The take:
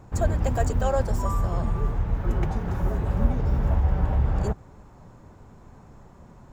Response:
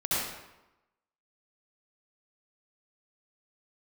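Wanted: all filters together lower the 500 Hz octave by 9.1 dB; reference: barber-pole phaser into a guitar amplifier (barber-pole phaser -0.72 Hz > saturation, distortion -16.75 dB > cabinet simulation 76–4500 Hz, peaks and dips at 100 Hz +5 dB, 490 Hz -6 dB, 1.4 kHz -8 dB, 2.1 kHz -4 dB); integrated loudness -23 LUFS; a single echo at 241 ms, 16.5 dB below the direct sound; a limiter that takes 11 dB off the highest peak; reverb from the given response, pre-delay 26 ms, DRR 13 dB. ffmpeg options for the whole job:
-filter_complex "[0:a]equalizer=f=500:t=o:g=-8.5,alimiter=limit=0.1:level=0:latency=1,aecho=1:1:241:0.15,asplit=2[s0][s1];[1:a]atrim=start_sample=2205,adelay=26[s2];[s1][s2]afir=irnorm=-1:irlink=0,volume=0.0708[s3];[s0][s3]amix=inputs=2:normalize=0,asplit=2[s4][s5];[s5]afreqshift=-0.72[s6];[s4][s6]amix=inputs=2:normalize=1,asoftclip=threshold=0.0596,highpass=76,equalizer=f=100:t=q:w=4:g=5,equalizer=f=490:t=q:w=4:g=-6,equalizer=f=1400:t=q:w=4:g=-8,equalizer=f=2100:t=q:w=4:g=-4,lowpass=f=4500:w=0.5412,lowpass=f=4500:w=1.3066,volume=4.73"

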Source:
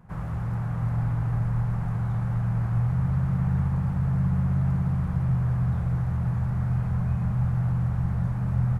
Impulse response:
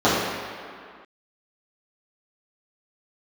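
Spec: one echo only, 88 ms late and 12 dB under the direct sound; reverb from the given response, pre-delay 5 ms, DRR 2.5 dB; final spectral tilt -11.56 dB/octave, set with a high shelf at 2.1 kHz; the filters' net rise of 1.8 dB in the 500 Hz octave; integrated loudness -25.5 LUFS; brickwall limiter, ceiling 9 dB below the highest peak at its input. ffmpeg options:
-filter_complex "[0:a]equalizer=f=500:t=o:g=3,highshelf=f=2100:g=-9,alimiter=limit=0.0668:level=0:latency=1,aecho=1:1:88:0.251,asplit=2[s0][s1];[1:a]atrim=start_sample=2205,adelay=5[s2];[s1][s2]afir=irnorm=-1:irlink=0,volume=0.0501[s3];[s0][s3]amix=inputs=2:normalize=0,volume=0.891"

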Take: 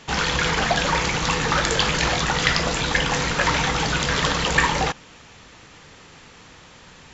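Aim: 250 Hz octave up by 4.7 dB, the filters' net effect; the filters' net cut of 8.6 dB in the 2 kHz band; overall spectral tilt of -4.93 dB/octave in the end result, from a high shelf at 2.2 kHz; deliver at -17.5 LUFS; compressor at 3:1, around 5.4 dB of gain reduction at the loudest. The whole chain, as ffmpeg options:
-af "equalizer=f=250:t=o:g=7,equalizer=f=2000:t=o:g=-8,highshelf=f=2200:g=-6,acompressor=threshold=0.0562:ratio=3,volume=3.35"

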